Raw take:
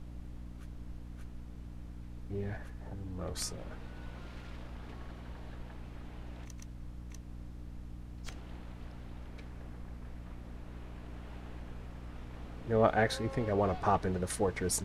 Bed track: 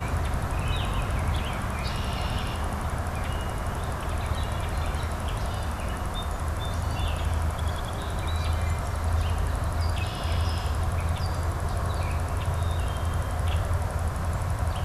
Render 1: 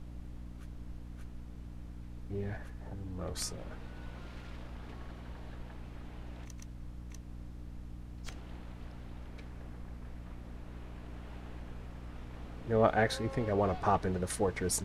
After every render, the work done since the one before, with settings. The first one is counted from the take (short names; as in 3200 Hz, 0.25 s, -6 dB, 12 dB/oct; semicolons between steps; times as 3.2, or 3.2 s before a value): nothing audible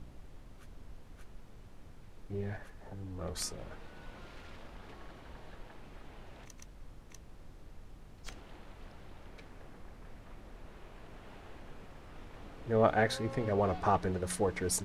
de-hum 60 Hz, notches 5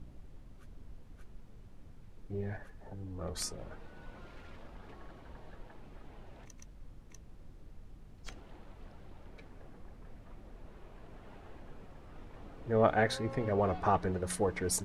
denoiser 6 dB, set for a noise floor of -54 dBFS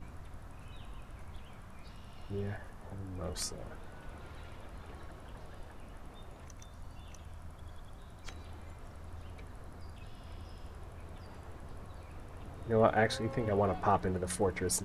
add bed track -23.5 dB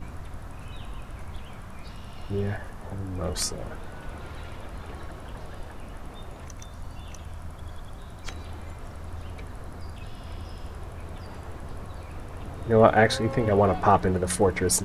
gain +9.5 dB